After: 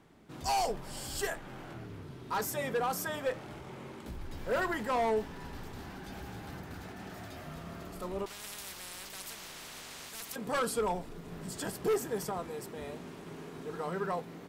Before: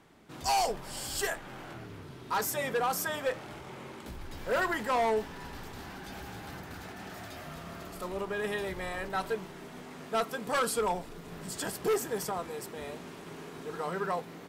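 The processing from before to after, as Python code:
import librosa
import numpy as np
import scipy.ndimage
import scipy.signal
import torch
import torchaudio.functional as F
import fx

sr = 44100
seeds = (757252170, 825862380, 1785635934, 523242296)

y = fx.low_shelf(x, sr, hz=480.0, db=5.5)
y = fx.spectral_comp(y, sr, ratio=10.0, at=(8.26, 10.36))
y = y * librosa.db_to_amplitude(-4.0)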